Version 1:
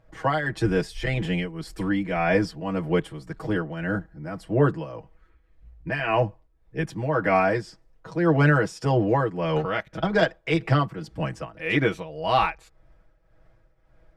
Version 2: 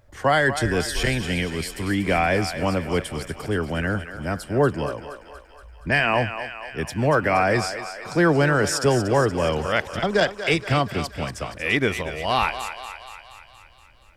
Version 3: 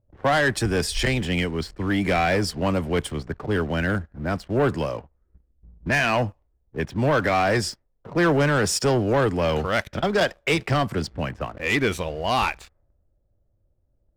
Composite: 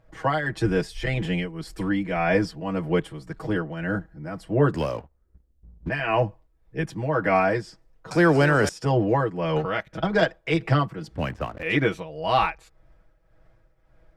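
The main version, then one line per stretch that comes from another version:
1
0:04.74–0:05.89: punch in from 3
0:08.11–0:08.69: punch in from 2
0:11.16–0:11.63: punch in from 3

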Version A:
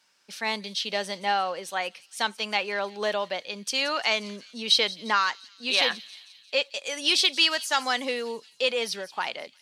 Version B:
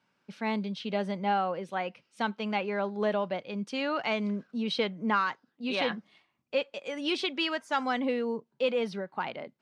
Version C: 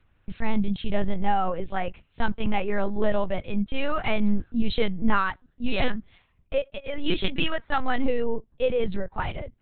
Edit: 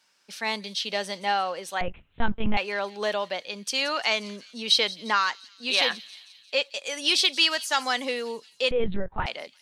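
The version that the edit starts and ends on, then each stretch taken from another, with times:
A
0:01.81–0:02.57: punch in from C
0:08.71–0:09.26: punch in from C
not used: B

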